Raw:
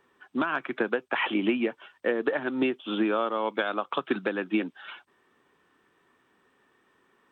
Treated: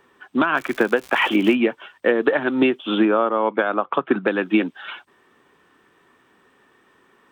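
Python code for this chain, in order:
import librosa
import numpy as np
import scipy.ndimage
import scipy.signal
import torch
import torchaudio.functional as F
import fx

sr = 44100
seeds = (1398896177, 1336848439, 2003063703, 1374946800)

y = fx.dmg_crackle(x, sr, seeds[0], per_s=180.0, level_db=-35.0, at=(0.56, 1.53), fade=0.02)
y = fx.lowpass(y, sr, hz=1800.0, slope=12, at=(3.05, 4.28))
y = y * librosa.db_to_amplitude(8.5)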